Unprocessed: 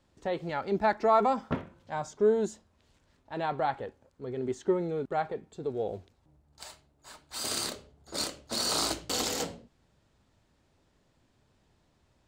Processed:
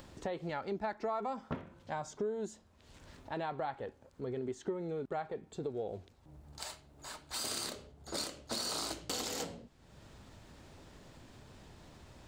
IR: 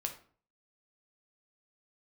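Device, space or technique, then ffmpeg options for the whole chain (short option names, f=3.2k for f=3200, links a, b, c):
upward and downward compression: -af "acompressor=mode=upward:threshold=-46dB:ratio=2.5,acompressor=threshold=-39dB:ratio=4,volume=2.5dB"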